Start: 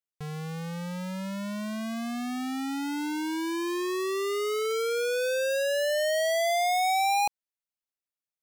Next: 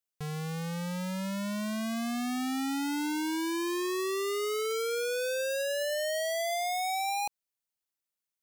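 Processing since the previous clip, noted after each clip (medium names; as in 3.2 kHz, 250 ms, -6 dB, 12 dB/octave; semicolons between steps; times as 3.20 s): treble shelf 4.7 kHz +5 dB; peak limiter -26.5 dBFS, peak gain reduction 7.5 dB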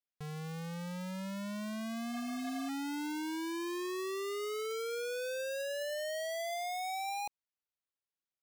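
median filter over 5 samples; spectral replace 2.15–2.67 s, 610–3800 Hz before; trim -6 dB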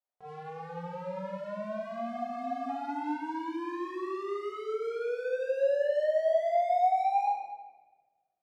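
band-pass filter 730 Hz, Q 2.4; reverberation RT60 1.3 s, pre-delay 3 ms, DRR -6 dB; trim +5.5 dB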